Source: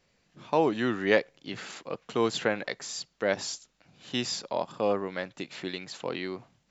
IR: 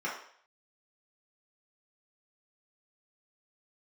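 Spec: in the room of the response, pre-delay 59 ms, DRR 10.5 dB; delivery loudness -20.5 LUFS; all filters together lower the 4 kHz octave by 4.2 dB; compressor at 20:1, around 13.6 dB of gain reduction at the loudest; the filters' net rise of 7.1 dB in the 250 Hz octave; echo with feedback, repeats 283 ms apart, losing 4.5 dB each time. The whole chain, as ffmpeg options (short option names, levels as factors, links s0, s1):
-filter_complex "[0:a]equalizer=f=250:t=o:g=9,equalizer=f=4000:t=o:g=-5.5,acompressor=threshold=0.0355:ratio=20,aecho=1:1:283|566|849|1132|1415|1698|1981|2264|2547:0.596|0.357|0.214|0.129|0.0772|0.0463|0.0278|0.0167|0.01,asplit=2[s0][s1];[1:a]atrim=start_sample=2205,adelay=59[s2];[s1][s2]afir=irnorm=-1:irlink=0,volume=0.133[s3];[s0][s3]amix=inputs=2:normalize=0,volume=5.31"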